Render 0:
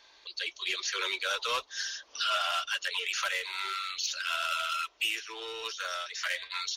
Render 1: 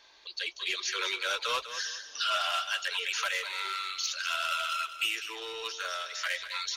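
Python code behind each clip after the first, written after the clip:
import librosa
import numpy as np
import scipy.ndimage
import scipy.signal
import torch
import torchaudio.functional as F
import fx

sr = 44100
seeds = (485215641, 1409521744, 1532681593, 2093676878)

y = fx.echo_feedback(x, sr, ms=199, feedback_pct=27, wet_db=-11.5)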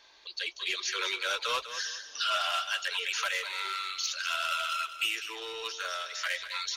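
y = x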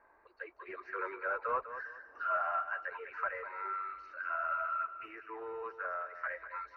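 y = scipy.signal.sosfilt(scipy.signal.cheby2(4, 40, 3100.0, 'lowpass', fs=sr, output='sos'), x)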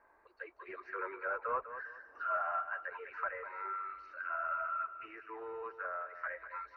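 y = fx.env_lowpass_down(x, sr, base_hz=2700.0, full_db=-35.5)
y = y * librosa.db_to_amplitude(-1.5)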